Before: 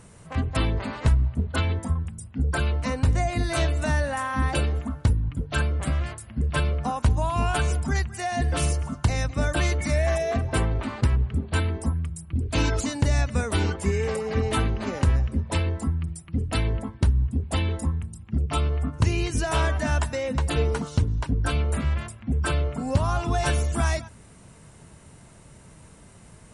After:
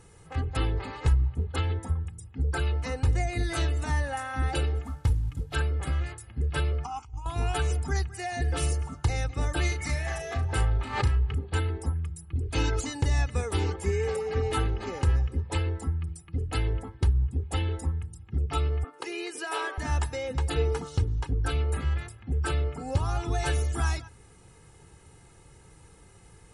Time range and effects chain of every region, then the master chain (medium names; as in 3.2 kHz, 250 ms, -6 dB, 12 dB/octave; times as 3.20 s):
4.84–5.54 s: CVSD coder 64 kbps + peaking EQ 380 Hz -7 dB 0.49 oct
6.84–7.26 s: peaking EQ 170 Hz -9.5 dB 1.9 oct + compressor with a negative ratio -30 dBFS, ratio -0.5 + static phaser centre 2.6 kHz, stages 8
9.68–11.38 s: peaking EQ 350 Hz -5 dB 1.6 oct + doubling 35 ms -6.5 dB + swell ahead of each attack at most 92 dB/s
18.84–19.78 s: high-pass 360 Hz 24 dB/octave + peaking EQ 6.3 kHz -8.5 dB 0.35 oct
whole clip: peaking EQ 190 Hz +7 dB 0.23 oct; comb 2.4 ms, depth 73%; trim -6 dB